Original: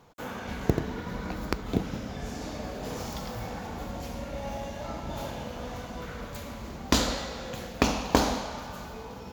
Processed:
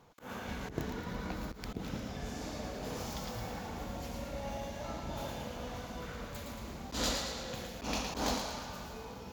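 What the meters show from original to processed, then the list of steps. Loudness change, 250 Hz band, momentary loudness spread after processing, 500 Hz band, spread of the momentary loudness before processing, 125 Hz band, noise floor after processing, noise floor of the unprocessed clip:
−7.0 dB, −8.5 dB, 9 LU, −7.5 dB, 13 LU, −7.5 dB, −47 dBFS, −41 dBFS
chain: delay with a high-pass on its return 113 ms, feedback 50%, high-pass 2,600 Hz, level −3.5 dB
volume swells 128 ms
level −4.5 dB

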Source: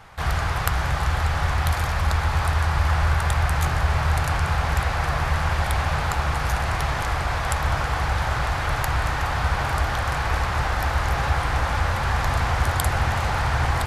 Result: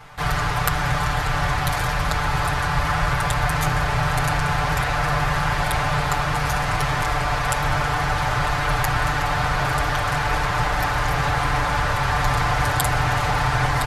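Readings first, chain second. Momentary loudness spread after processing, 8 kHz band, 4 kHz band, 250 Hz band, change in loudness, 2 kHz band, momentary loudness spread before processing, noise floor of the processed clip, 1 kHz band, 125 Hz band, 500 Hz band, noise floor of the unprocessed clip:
2 LU, +3.5 dB, +3.5 dB, +4.5 dB, +2.0 dB, +3.5 dB, 2 LU, −23 dBFS, +3.5 dB, −0.5 dB, +3.0 dB, −26 dBFS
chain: comb filter 6.8 ms, depth 88%
level +1 dB

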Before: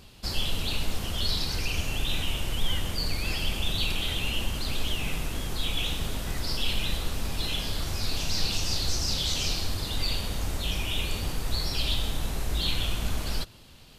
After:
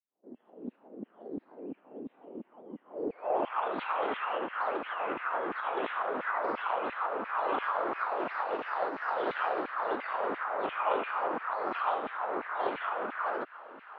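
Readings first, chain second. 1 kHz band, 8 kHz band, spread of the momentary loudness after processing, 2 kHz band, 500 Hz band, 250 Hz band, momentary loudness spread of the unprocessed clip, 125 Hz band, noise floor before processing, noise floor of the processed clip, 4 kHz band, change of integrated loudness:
+11.0 dB, below −40 dB, 14 LU, −0.5 dB, +7.0 dB, −3.5 dB, 5 LU, below −25 dB, −49 dBFS, −67 dBFS, −23.0 dB, −3.0 dB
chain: fade in at the beginning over 1.73 s
in parallel at −6 dB: sample-and-hold swept by an LFO 29×, swing 60% 0.24 Hz
on the sum: low-pass filter 5,900 Hz
downward compressor, threshold −27 dBFS, peak gain reduction 11.5 dB
high-pass filter 160 Hz 24 dB per octave
auto-filter high-pass saw down 2.9 Hz 230–2,500 Hz
high-shelf EQ 4,500 Hz −12 dB
low-pass filter sweep 250 Hz → 1,300 Hz, 0:02.85–0:03.60
three-way crossover with the lows and the highs turned down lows −15 dB, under 380 Hz, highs −14 dB, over 3,200 Hz
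highs frequency-modulated by the lows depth 0.13 ms
level +8 dB

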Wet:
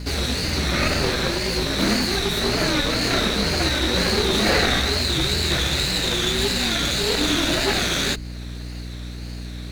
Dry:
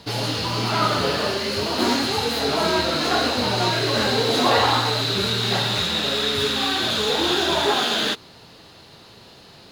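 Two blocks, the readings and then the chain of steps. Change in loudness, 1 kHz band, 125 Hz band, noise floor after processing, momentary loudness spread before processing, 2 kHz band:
0.0 dB, −5.5 dB, +3.0 dB, −32 dBFS, 4 LU, +1.5 dB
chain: lower of the sound and its delayed copy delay 0.47 ms
in parallel at +0.5 dB: downward compressor, threshold −37 dBFS, peak gain reduction 19 dB
on the sum: tape wow and flutter 110 cents
frequency shifter −42 Hz
mains hum 60 Hz, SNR 10 dB

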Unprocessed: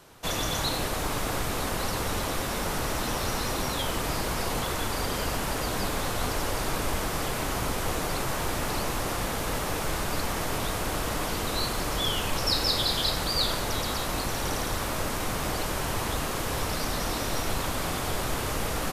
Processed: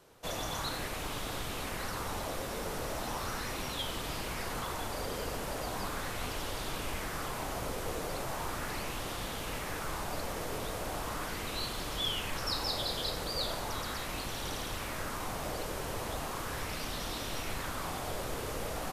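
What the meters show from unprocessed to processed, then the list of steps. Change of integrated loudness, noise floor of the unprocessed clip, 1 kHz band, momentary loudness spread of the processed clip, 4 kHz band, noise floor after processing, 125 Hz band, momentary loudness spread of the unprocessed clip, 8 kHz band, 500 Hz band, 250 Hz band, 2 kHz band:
−8.0 dB, −31 dBFS, −7.0 dB, 4 LU, −7.5 dB, −39 dBFS, −9.0 dB, 4 LU, −9.0 dB, −7.0 dB, −8.5 dB, −7.0 dB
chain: auto-filter bell 0.38 Hz 460–3,500 Hz +6 dB
level −9 dB

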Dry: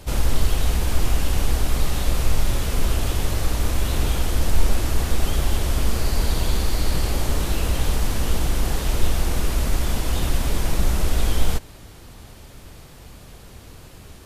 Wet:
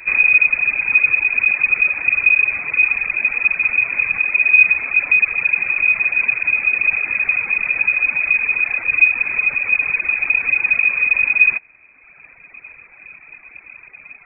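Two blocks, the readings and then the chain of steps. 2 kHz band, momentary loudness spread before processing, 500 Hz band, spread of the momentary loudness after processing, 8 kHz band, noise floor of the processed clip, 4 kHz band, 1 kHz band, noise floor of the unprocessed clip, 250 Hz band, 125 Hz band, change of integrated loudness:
+23.5 dB, 20 LU, below −10 dB, 5 LU, below −40 dB, −47 dBFS, below −35 dB, −4.0 dB, −44 dBFS, below −15 dB, below −20 dB, +11.0 dB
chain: in parallel at +1 dB: brickwall limiter −15.5 dBFS, peak gain reduction 11 dB
on the sum: voice inversion scrambler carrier 2,500 Hz
reverb reduction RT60 1.8 s
level −2.5 dB

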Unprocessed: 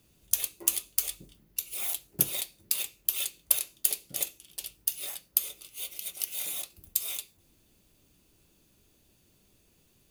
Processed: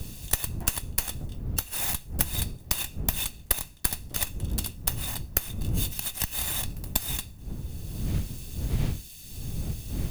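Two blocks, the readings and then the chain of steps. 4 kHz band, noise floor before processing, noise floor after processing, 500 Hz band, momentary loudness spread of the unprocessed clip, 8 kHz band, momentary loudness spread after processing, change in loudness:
+3.0 dB, −66 dBFS, −46 dBFS, +7.5 dB, 10 LU, 0.0 dB, 10 LU, +0.5 dB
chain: lower of the sound and its delayed copy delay 1.1 ms
wind on the microphone 100 Hz −36 dBFS
multiband upward and downward compressor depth 70%
level +3 dB

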